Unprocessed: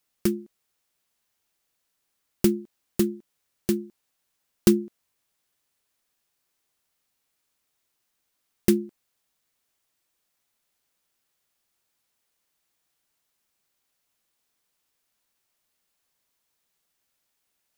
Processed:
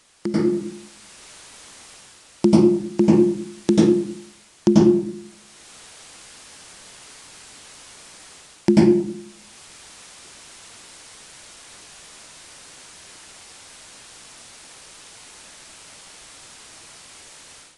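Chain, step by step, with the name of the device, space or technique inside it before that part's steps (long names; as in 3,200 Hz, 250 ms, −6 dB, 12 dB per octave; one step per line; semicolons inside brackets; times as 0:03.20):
treble cut that deepens with the level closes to 430 Hz, closed at −27.5 dBFS
filmed off a television (band-pass filter 220–7,400 Hz; parametric band 910 Hz +7 dB 0.25 octaves; convolution reverb RT60 0.60 s, pre-delay 86 ms, DRR −8 dB; white noise bed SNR 23 dB; automatic gain control gain up to 13.5 dB; level −1 dB; AAC 64 kbit/s 22,050 Hz)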